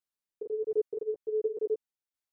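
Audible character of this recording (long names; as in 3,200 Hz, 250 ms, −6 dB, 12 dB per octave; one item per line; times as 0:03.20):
tremolo saw down 1.4 Hz, depth 55%
a shimmering, thickened sound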